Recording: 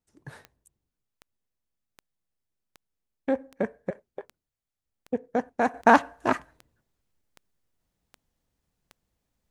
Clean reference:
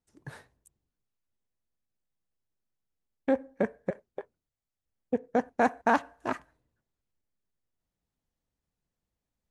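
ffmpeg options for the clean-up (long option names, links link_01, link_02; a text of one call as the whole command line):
ffmpeg -i in.wav -af "adeclick=threshold=4,asetnsamples=nb_out_samples=441:pad=0,asendcmd='5.74 volume volume -7.5dB',volume=0dB" out.wav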